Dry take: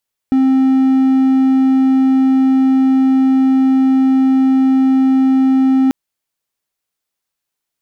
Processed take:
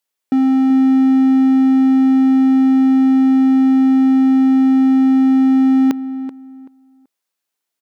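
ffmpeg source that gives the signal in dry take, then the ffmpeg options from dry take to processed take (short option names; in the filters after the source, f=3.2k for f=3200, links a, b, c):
-f lavfi -i "aevalsrc='0.473*(1-4*abs(mod(264*t+0.25,1)-0.5))':d=5.59:s=44100"
-filter_complex "[0:a]highpass=210,asplit=2[a][b];[b]adelay=382,lowpass=f=1.9k:p=1,volume=-12dB,asplit=2[c][d];[d]adelay=382,lowpass=f=1.9k:p=1,volume=0.24,asplit=2[e][f];[f]adelay=382,lowpass=f=1.9k:p=1,volume=0.24[g];[c][e][g]amix=inputs=3:normalize=0[h];[a][h]amix=inputs=2:normalize=0"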